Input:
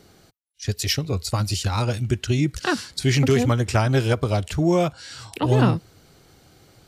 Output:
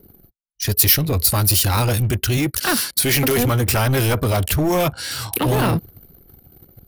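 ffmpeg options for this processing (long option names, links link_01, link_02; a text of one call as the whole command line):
ffmpeg -i in.wav -filter_complex "[0:a]asettb=1/sr,asplit=3[link_01][link_02][link_03];[link_01]atrim=end=2.374[link_04];[link_02]atrim=start=2.37:end=3.38,asetpts=PTS-STARTPTS,afade=type=in:duration=0.004:curve=qsin,afade=type=out:start_time=1.006:duration=0.004:curve=qsin,highpass=frequency=310:poles=1[link_05];[link_03]atrim=start=3.376[link_06];[link_04][link_05]acrossfade=duration=0.004:curve1=hsin:curve2=qsin[link_07];[link_07][link_06]acrossfade=duration=0.004:curve1=qsin:curve2=hsin,apsyclip=22.5dB,asplit=2[link_08][link_09];[link_09]aeval=exprs='0.335*(abs(mod(val(0)/0.335+3,4)-2)-1)':channel_layout=same,volume=-10.5dB[link_10];[link_08][link_10]amix=inputs=2:normalize=0,aexciter=amount=9.6:drive=4:freq=10000,anlmdn=3980,volume=-13.5dB" out.wav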